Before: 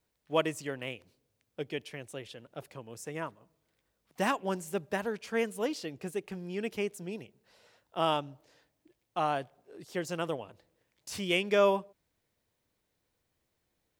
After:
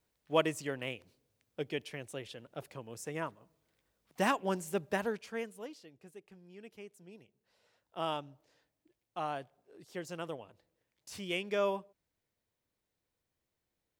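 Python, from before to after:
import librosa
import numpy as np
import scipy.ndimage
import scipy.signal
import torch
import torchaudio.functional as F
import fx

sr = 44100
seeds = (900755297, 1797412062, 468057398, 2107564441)

y = fx.gain(x, sr, db=fx.line((5.1, -0.5), (5.31, -7.0), (5.85, -16.5), (6.86, -16.5), (7.98, -7.0)))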